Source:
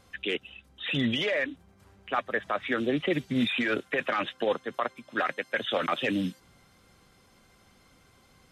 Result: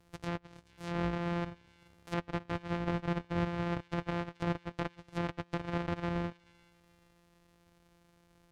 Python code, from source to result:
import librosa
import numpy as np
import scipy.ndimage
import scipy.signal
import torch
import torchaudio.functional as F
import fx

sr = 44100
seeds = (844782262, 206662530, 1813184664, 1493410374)

y = np.r_[np.sort(x[:len(x) // 256 * 256].reshape(-1, 256), axis=1).ravel(), x[len(x) // 256 * 256:]]
y = fx.env_lowpass_down(y, sr, base_hz=2500.0, full_db=-27.5)
y = fx.echo_wet_highpass(y, sr, ms=431, feedback_pct=37, hz=2500.0, wet_db=-17.5)
y = y * 10.0 ** (-6.0 / 20.0)